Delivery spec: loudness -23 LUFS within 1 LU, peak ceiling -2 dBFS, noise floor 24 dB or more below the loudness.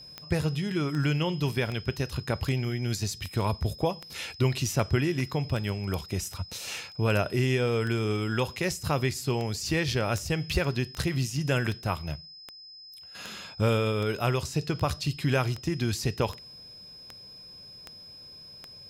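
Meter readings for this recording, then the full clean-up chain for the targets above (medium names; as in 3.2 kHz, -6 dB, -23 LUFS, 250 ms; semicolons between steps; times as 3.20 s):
clicks found 25; steady tone 5.1 kHz; tone level -45 dBFS; loudness -29.0 LUFS; peak level -10.5 dBFS; loudness target -23.0 LUFS
-> de-click; band-stop 5.1 kHz, Q 30; trim +6 dB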